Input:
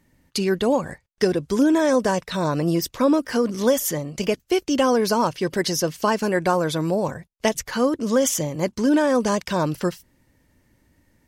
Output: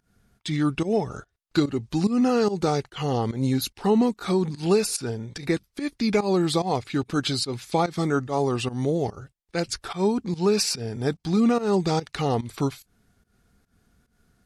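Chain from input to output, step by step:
fake sidechain pumping 93 BPM, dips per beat 2, −17 dB, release 134 ms
speed change −22%
level −2 dB

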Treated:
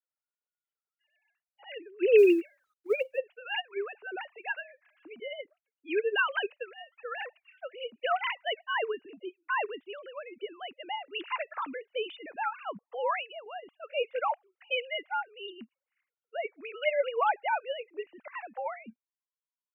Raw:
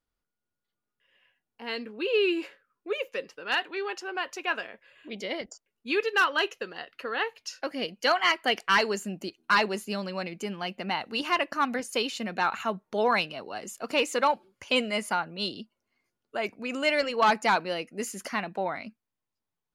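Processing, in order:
three sine waves on the formant tracks
0:02.18–0:03.18: log-companded quantiser 8 bits
level −3 dB

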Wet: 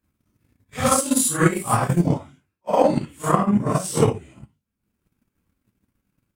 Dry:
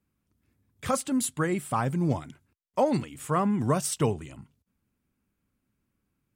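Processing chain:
random phases in long frames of 200 ms
transient designer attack +11 dB, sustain −8 dB
speech leveller 0.5 s
0:00.86–0:02.07: high-shelf EQ 4,300 Hz +9 dB
level +4 dB

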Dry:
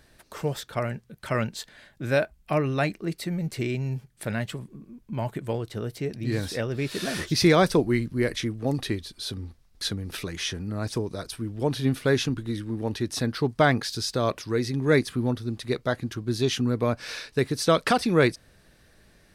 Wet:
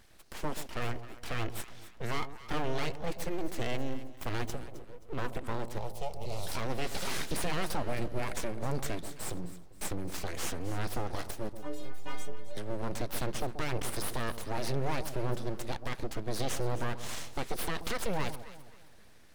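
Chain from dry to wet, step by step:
full-wave rectification
0:11.49–0:12.57: stiff-string resonator 89 Hz, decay 0.69 s, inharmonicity 0.03
brickwall limiter −21 dBFS, peak gain reduction 12.5 dB
0:05.78–0:06.47: phaser with its sweep stopped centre 670 Hz, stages 4
delay that swaps between a low-pass and a high-pass 132 ms, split 910 Hz, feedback 57%, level −10 dB
level −1 dB

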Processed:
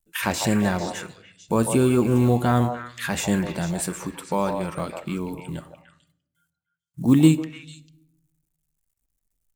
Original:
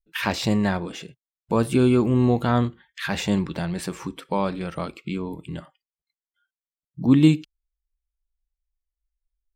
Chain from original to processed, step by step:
log-companded quantiser 8 bits
tape wow and flutter 26 cents
high shelf with overshoot 6,100 Hz +8 dB, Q 1.5
echo through a band-pass that steps 149 ms, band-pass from 700 Hz, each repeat 1.4 octaves, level −3 dB
on a send at −16.5 dB: convolution reverb RT60 0.75 s, pre-delay 6 ms

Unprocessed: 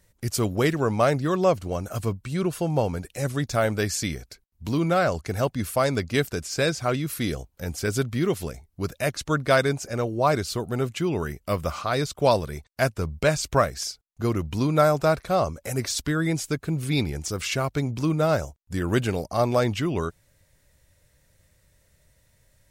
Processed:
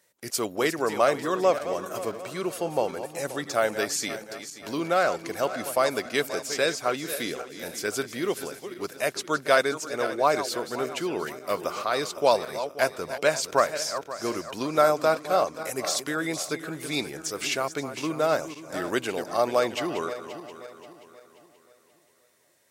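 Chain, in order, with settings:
feedback delay that plays each chunk backwards 265 ms, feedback 62%, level −11 dB
high-pass filter 370 Hz 12 dB per octave

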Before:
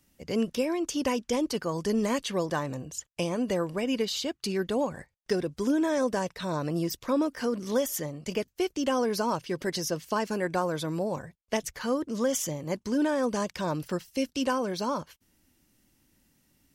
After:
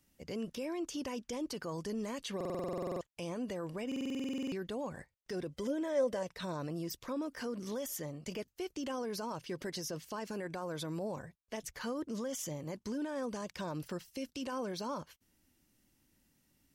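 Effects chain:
brickwall limiter −25.5 dBFS, peak gain reduction 11 dB
0:05.52–0:06.23: hollow resonant body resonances 550/2,000/3,100 Hz, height 14 dB
buffer that repeats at 0:02.36/0:03.87, samples 2,048, times 13
level −5.5 dB

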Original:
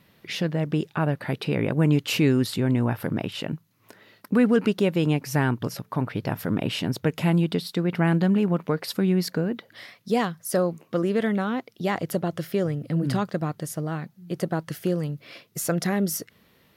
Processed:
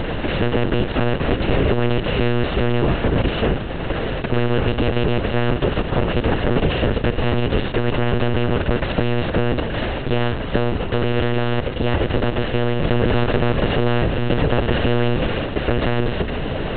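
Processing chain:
compressor on every frequency bin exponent 0.2
one-pitch LPC vocoder at 8 kHz 120 Hz
0:12.82–0:15.27: envelope flattener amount 50%
level −3.5 dB

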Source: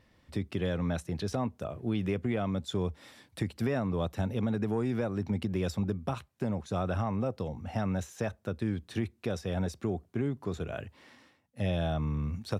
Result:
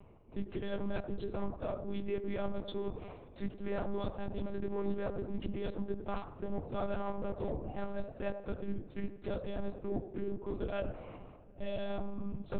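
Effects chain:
adaptive Wiener filter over 25 samples
low-shelf EQ 220 Hz −5 dB
reversed playback
downward compressor 6 to 1, threshold −48 dBFS, peak gain reduction 18.5 dB
reversed playback
mains hum 60 Hz, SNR 30 dB
chorus effect 0.33 Hz, delay 18.5 ms, depth 5.7 ms
delay with a band-pass on its return 93 ms, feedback 38%, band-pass 650 Hz, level −8 dB
on a send at −15 dB: convolution reverb RT60 3.1 s, pre-delay 3 ms
on the sum: one-pitch LPC vocoder at 8 kHz 200 Hz
level +16.5 dB

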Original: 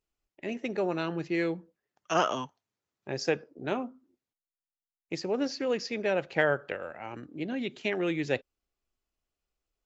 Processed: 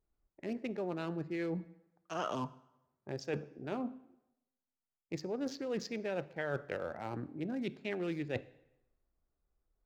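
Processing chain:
adaptive Wiener filter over 15 samples
low-shelf EQ 180 Hz +6 dB
reversed playback
downward compressor 6 to 1, threshold −36 dBFS, peak gain reduction 16 dB
reversed playback
dense smooth reverb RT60 0.9 s, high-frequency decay 0.85×, DRR 16 dB
level +1.5 dB

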